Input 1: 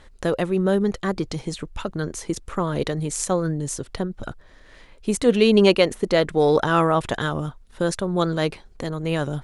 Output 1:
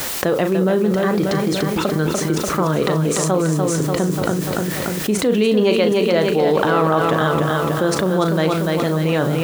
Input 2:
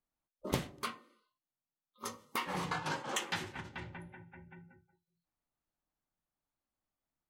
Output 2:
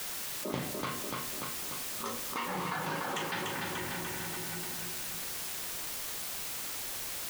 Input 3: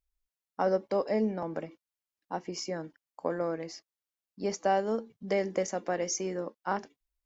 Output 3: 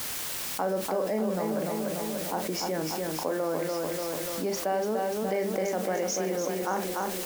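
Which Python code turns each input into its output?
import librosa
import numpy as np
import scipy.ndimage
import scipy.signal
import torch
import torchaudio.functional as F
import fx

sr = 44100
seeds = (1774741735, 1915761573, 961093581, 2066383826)

p1 = fx.high_shelf(x, sr, hz=6100.0, db=-11.5)
p2 = fx.doubler(p1, sr, ms=38.0, db=-10.0)
p3 = fx.vibrato(p2, sr, rate_hz=0.39, depth_cents=14.0)
p4 = scipy.signal.sosfilt(scipy.signal.butter(2, 130.0, 'highpass', fs=sr, output='sos'), p3)
p5 = fx.echo_feedback(p4, sr, ms=293, feedback_pct=52, wet_db=-6.0)
p6 = fx.quant_dither(p5, sr, seeds[0], bits=6, dither='triangular')
p7 = p5 + (p6 * 10.0 ** (-11.0 / 20.0))
p8 = fx.env_flatten(p7, sr, amount_pct=70)
y = p8 * 10.0 ** (-5.0 / 20.0)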